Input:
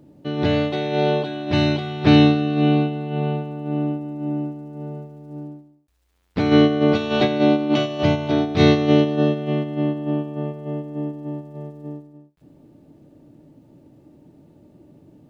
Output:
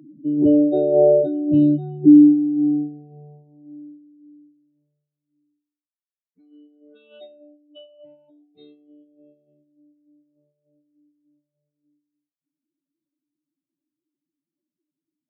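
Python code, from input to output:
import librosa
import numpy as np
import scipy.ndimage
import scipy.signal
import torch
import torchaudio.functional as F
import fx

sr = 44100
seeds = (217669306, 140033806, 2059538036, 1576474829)

y = fx.spec_expand(x, sr, power=3.9)
y = fx.filter_sweep_highpass(y, sr, from_hz=240.0, to_hz=3100.0, start_s=1.87, end_s=5.28, q=0.85)
y = F.gain(torch.from_numpy(y), 6.0).numpy()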